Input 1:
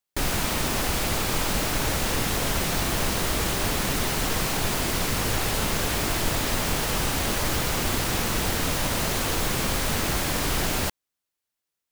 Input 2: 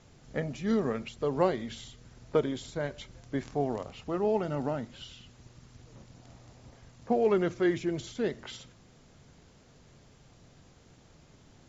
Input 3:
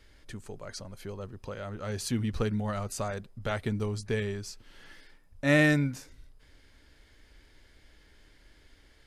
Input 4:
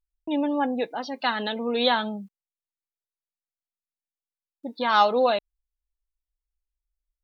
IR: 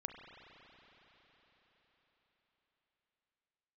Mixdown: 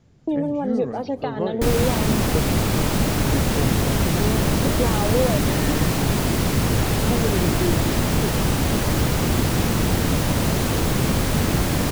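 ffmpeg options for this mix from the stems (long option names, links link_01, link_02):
-filter_complex "[0:a]adelay=1450,volume=-0.5dB[link_01];[1:a]acrossover=split=3000[link_02][link_03];[link_03]acompressor=threshold=-54dB:ratio=4:attack=1:release=60[link_04];[link_02][link_04]amix=inputs=2:normalize=0,volume=-7.5dB[link_05];[2:a]volume=-14dB,asplit=2[link_06][link_07];[link_07]volume=-4dB[link_08];[3:a]acompressor=threshold=-30dB:ratio=6,equalizer=frequency=500:width_type=o:width=1.8:gain=13,volume=-8dB,asplit=2[link_09][link_10];[link_10]volume=-11dB[link_11];[4:a]atrim=start_sample=2205[link_12];[link_11][link_12]afir=irnorm=-1:irlink=0[link_13];[link_08]aecho=0:1:189:1[link_14];[link_01][link_05][link_06][link_09][link_13][link_14]amix=inputs=6:normalize=0,equalizer=frequency=140:width=0.31:gain=11"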